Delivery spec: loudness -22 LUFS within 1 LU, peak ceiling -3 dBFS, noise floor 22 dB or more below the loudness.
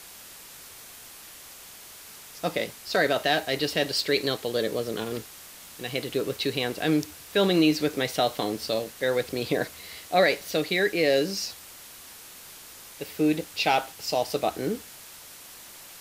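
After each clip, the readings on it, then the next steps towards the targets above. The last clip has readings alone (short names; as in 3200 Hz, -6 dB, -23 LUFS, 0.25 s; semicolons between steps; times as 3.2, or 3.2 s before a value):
noise floor -46 dBFS; noise floor target -49 dBFS; loudness -26.5 LUFS; peak -9.0 dBFS; loudness target -22.0 LUFS
-> denoiser 6 dB, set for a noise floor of -46 dBFS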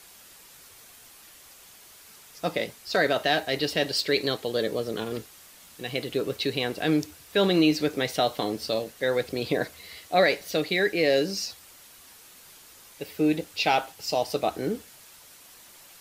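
noise floor -51 dBFS; loudness -26.5 LUFS; peak -9.0 dBFS; loudness target -22.0 LUFS
-> gain +4.5 dB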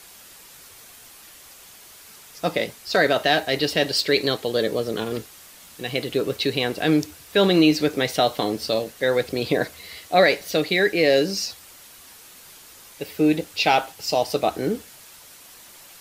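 loudness -22.0 LUFS; peak -4.5 dBFS; noise floor -47 dBFS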